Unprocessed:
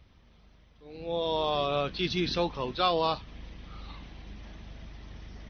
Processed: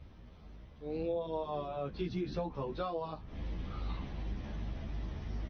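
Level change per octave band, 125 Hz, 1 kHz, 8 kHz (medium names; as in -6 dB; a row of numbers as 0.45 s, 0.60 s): -1.0 dB, -10.5 dB, no reading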